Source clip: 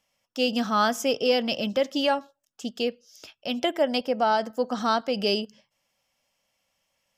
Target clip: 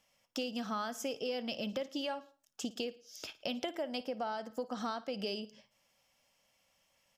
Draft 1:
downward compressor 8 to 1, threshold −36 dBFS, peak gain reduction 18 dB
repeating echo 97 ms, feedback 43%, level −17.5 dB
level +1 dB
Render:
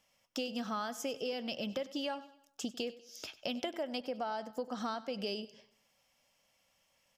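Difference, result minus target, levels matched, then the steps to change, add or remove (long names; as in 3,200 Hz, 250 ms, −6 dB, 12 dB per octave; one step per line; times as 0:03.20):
echo 41 ms late
change: repeating echo 56 ms, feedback 43%, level −17.5 dB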